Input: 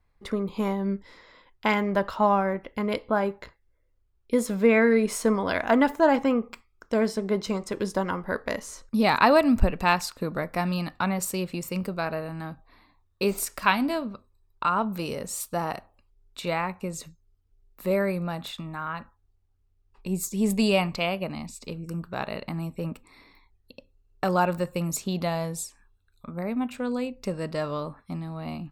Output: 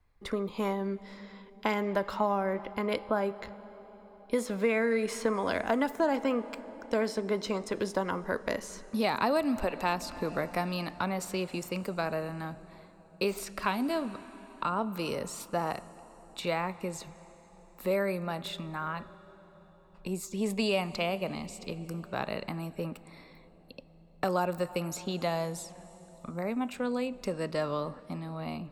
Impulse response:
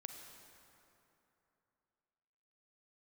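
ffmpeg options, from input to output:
-filter_complex "[0:a]asplit=2[a][b];[1:a]atrim=start_sample=2205,asetrate=22932,aresample=44100[c];[b][c]afir=irnorm=-1:irlink=0,volume=-14dB[d];[a][d]amix=inputs=2:normalize=0,acrossover=split=270|680|5100[e][f][g][h];[e]acompressor=threshold=-38dB:ratio=4[i];[f]acompressor=threshold=-27dB:ratio=4[j];[g]acompressor=threshold=-30dB:ratio=4[k];[h]acompressor=threshold=-44dB:ratio=4[l];[i][j][k][l]amix=inputs=4:normalize=0,volume=-2dB"

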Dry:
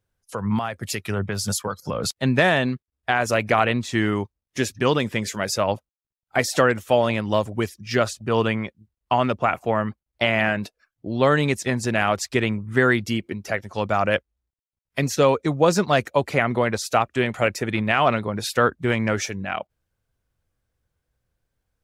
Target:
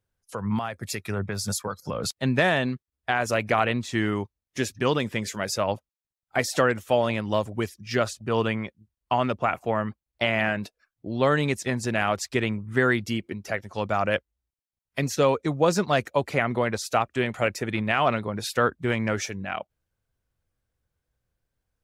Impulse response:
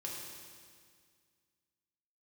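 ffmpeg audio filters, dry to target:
-filter_complex "[0:a]asettb=1/sr,asplit=3[a][b][c];[a]atrim=end=0.734[d];[b]atrim=start=0.73:end=1.86,asetpts=PTS-STARTPTS,afade=t=in:d=0.004:c=qsin,afade=t=out:st=1.126:d=0.004:c=qsin,bandreject=f=3k:w=6.2[e];[c]atrim=start=1.856[f];[d][e]acrossfade=d=0.004:c1=hsin:c2=qsin[g];[g][f]acrossfade=d=0.004:c1=qsin:c2=hsin,volume=-3.5dB"

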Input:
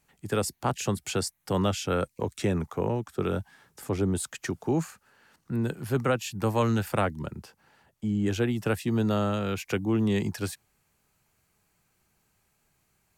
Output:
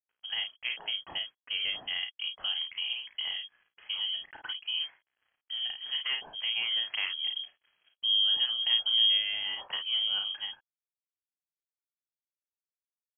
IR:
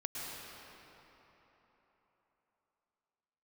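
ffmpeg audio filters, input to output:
-filter_complex "[0:a]asettb=1/sr,asplit=3[a][b][c];[a]atrim=end=7.094[d];[b]atrim=start=7.09:end=9.17,asetpts=PTS-STARTPTS,afade=t=in:d=0.004:c=qsin,afade=t=out:st=2.076:d=0.004:c=qsin,equalizer=f=100:t=o:w=2.2:g=13[e];[c]atrim=start=9.166[f];[d][e]acrossfade=d=0.004:c1=hsin:c2=qsin[g];[g][f]acrossfade=d=0.004:c1=qsin:c2=hsin,acompressor=threshold=-36dB:ratio=1.5,aeval=exprs='sgn(val(0))*max(abs(val(0))-0.0015,0)':c=same,afreqshift=450,aecho=1:1:34|52:0.473|0.447,lowpass=f=3.2k:t=q:w=0.5098,lowpass=f=3.2k:t=q:w=0.6013,lowpass=f=3.2k:t=q:w=0.9,lowpass=f=3.2k:t=q:w=2.563,afreqshift=-3800,volume=-3dB"

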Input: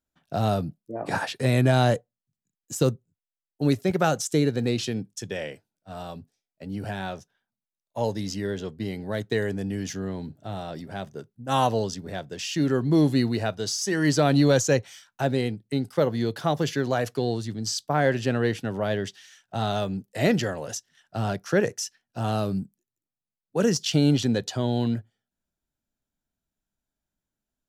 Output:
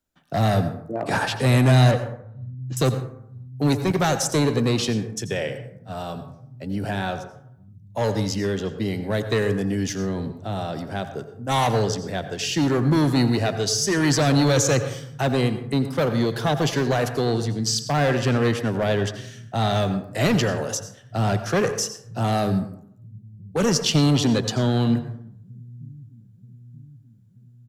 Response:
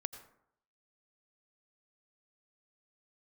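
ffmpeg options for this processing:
-filter_complex "[0:a]asettb=1/sr,asplit=3[a][b][c];[a]atrim=end=1.914[d];[b]atrim=start=1.91:end=2.77,asetpts=PTS-STARTPTS,afade=t=in:d=0.004:c=qsin,afade=t=out:st=0.856:d=0.004:c=qsin,lowpass=f=3.6k:w=0.5412,lowpass=f=3.6k:w=1.3066[e];[c]atrim=start=2.766[f];[d][e]acrossfade=d=0.004:c1=hsin:c2=qsin[g];[g][f]acrossfade=d=0.004:c1=qsin:c2=hsin,acrossover=split=150|2500[h][i][j];[h]aecho=1:1:931|1862|2793|3724|4655|5586:0.2|0.118|0.0695|0.041|0.0242|0.0143[k];[i]asoftclip=type=hard:threshold=-24dB[l];[k][l][j]amix=inputs=3:normalize=0[m];[1:a]atrim=start_sample=2205[n];[m][n]afir=irnorm=-1:irlink=0,volume=7dB"

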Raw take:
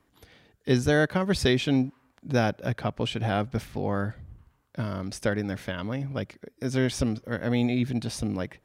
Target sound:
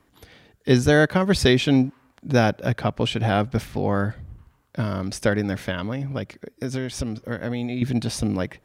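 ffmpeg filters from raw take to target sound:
-filter_complex "[0:a]asettb=1/sr,asplit=3[a][b][c];[a]atrim=end=5.754[d];[b]atrim=start=5.75:end=7.82,asetpts=PTS-STARTPTS,afade=t=in:d=0.004:c=qsin,afade=t=out:st=2.066:d=0.004:c=qsin,acompressor=threshold=-29dB:ratio=10[e];[c]atrim=start=7.816[f];[d][e]acrossfade=d=0.004:c1=hsin:c2=qsin[g];[g][f]acrossfade=d=0.004:c1=qsin:c2=hsin,volume=5.5dB"

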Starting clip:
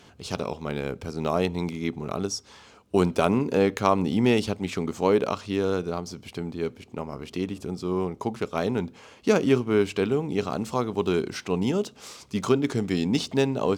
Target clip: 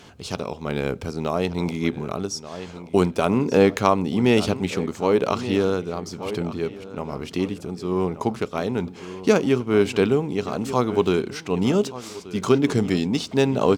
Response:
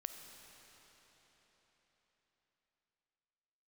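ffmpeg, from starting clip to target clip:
-filter_complex "[0:a]asplit=2[a][b];[b]adelay=1181,lowpass=f=4.4k:p=1,volume=-15dB,asplit=2[c][d];[d]adelay=1181,lowpass=f=4.4k:p=1,volume=0.38,asplit=2[e][f];[f]adelay=1181,lowpass=f=4.4k:p=1,volume=0.38[g];[a][c][e][g]amix=inputs=4:normalize=0,tremolo=f=1.1:d=0.44,volume=5.5dB"

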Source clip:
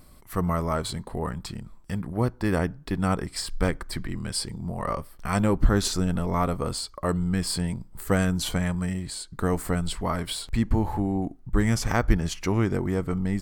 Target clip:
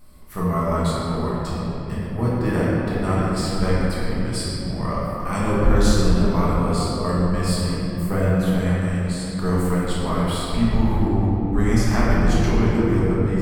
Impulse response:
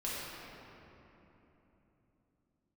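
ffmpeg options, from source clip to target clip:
-filter_complex "[0:a]asettb=1/sr,asplit=3[a][b][c];[a]atrim=end=8.064[d];[b]atrim=start=8.06:end=8.58,asetpts=PTS-STARTPTS,afade=t=in:d=0.004:c=qsin,afade=t=out:st=0.516:d=0.004:c=qsin,equalizer=f=5.8k:w=0.56:g=-12.5[e];[c]atrim=start=8.576[f];[d][e]acrossfade=d=0.004:c1=hsin:c2=qsin[g];[g][f]acrossfade=d=0.004:c1=qsin:c2=hsin[h];[1:a]atrim=start_sample=2205[i];[h][i]afir=irnorm=-1:irlink=0"

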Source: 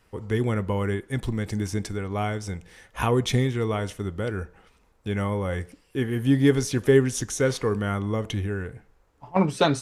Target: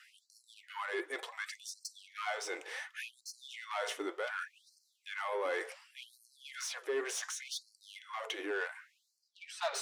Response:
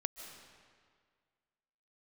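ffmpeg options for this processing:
-filter_complex "[0:a]areverse,acompressor=threshold=-31dB:ratio=20,areverse,flanger=delay=1.4:depth=5.5:regen=74:speed=0.64:shape=sinusoidal,asplit=2[a][b];[b]highpass=f=720:p=1,volume=18dB,asoftclip=type=tanh:threshold=-27.5dB[c];[a][c]amix=inputs=2:normalize=0,lowpass=f=3.1k:p=1,volume=-6dB,afftfilt=real='re*gte(b*sr/1024,290*pow(4200/290,0.5+0.5*sin(2*PI*0.68*pts/sr)))':imag='im*gte(b*sr/1024,290*pow(4200/290,0.5+0.5*sin(2*PI*0.68*pts/sr)))':win_size=1024:overlap=0.75,volume=3dB"

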